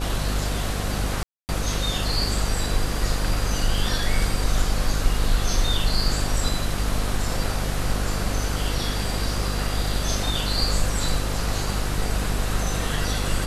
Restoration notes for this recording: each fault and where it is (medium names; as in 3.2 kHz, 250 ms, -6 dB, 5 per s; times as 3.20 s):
buzz 50 Hz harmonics 15 -27 dBFS
1.23–1.49 s: dropout 259 ms